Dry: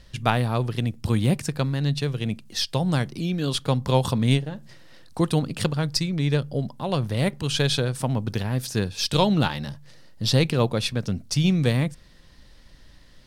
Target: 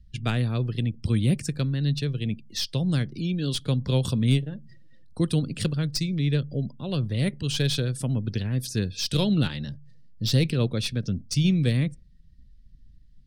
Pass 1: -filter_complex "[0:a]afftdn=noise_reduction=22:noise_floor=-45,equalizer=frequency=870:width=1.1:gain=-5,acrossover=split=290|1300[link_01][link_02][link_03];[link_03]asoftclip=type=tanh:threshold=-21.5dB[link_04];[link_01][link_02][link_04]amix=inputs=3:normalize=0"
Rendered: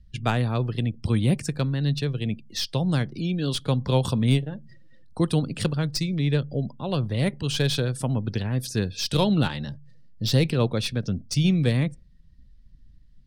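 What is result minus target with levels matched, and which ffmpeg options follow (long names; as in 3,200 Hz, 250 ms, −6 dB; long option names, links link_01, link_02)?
1,000 Hz band +7.5 dB
-filter_complex "[0:a]afftdn=noise_reduction=22:noise_floor=-45,equalizer=frequency=870:width=1.1:gain=-15.5,acrossover=split=290|1300[link_01][link_02][link_03];[link_03]asoftclip=type=tanh:threshold=-21.5dB[link_04];[link_01][link_02][link_04]amix=inputs=3:normalize=0"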